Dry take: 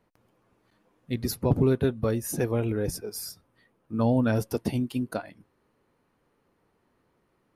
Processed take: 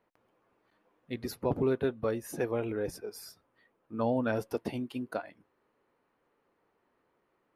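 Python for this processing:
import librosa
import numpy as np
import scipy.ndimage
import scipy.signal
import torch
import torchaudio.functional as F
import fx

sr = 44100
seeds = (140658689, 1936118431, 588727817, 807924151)

y = fx.bass_treble(x, sr, bass_db=-11, treble_db=-10)
y = F.gain(torch.from_numpy(y), -2.0).numpy()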